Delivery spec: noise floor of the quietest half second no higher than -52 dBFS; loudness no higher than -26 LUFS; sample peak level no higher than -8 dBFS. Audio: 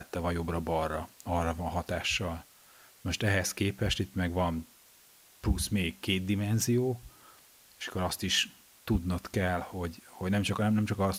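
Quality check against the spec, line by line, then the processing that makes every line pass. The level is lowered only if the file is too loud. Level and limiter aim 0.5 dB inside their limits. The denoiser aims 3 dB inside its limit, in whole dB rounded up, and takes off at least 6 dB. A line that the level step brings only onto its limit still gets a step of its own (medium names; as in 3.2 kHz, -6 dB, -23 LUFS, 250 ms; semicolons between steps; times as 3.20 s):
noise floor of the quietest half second -59 dBFS: pass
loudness -31.5 LUFS: pass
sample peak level -13.5 dBFS: pass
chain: none needed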